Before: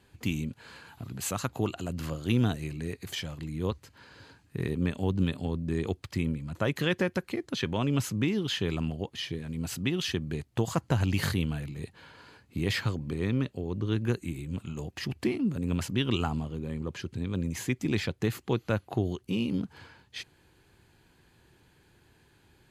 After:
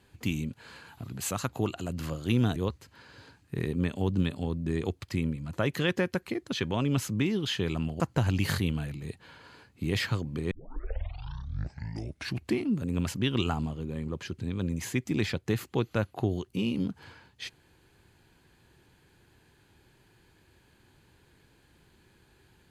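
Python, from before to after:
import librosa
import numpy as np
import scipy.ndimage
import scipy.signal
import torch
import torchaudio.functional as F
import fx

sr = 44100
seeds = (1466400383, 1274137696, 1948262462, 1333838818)

y = fx.edit(x, sr, fx.cut(start_s=2.56, length_s=1.02),
    fx.cut(start_s=9.02, length_s=1.72),
    fx.tape_start(start_s=13.25, length_s=1.99), tone=tone)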